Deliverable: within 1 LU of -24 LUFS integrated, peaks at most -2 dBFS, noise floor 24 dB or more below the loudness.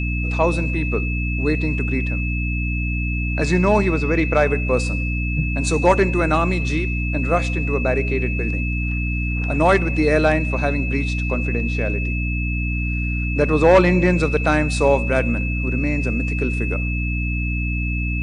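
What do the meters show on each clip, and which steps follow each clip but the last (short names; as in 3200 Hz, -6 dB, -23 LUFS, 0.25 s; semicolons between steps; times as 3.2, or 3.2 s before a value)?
hum 60 Hz; harmonics up to 300 Hz; hum level -20 dBFS; steady tone 2600 Hz; tone level -27 dBFS; loudness -20.0 LUFS; peak -3.5 dBFS; loudness target -24.0 LUFS
-> de-hum 60 Hz, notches 5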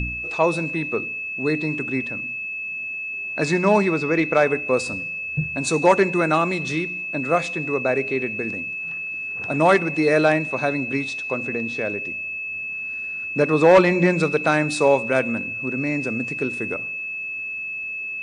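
hum none; steady tone 2600 Hz; tone level -27 dBFS
-> notch 2600 Hz, Q 30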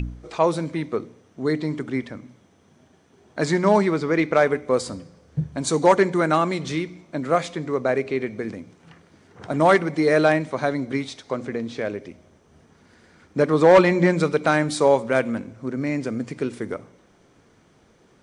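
steady tone none; loudness -22.0 LUFS; peak -4.5 dBFS; loudness target -24.0 LUFS
-> gain -2 dB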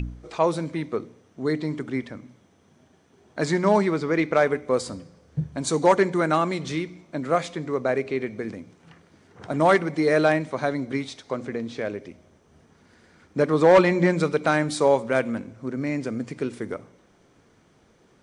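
loudness -24.0 LUFS; peak -6.5 dBFS; noise floor -60 dBFS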